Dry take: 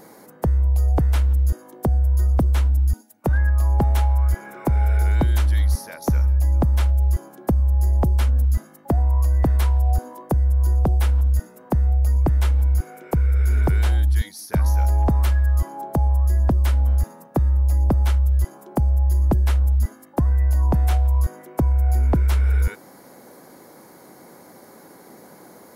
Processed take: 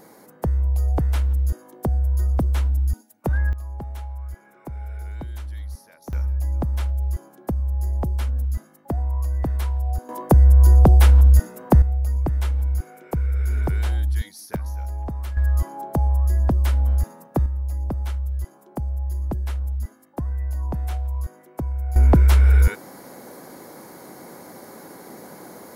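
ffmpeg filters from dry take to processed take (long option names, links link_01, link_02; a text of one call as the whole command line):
ffmpeg -i in.wav -af "asetnsamples=nb_out_samples=441:pad=0,asendcmd='3.53 volume volume -14.5dB;6.13 volume volume -5.5dB;10.09 volume volume 6.5dB;11.82 volume volume -4dB;14.56 volume volume -11dB;15.37 volume volume -1dB;17.46 volume volume -8dB;21.96 volume volume 4.5dB',volume=-2.5dB" out.wav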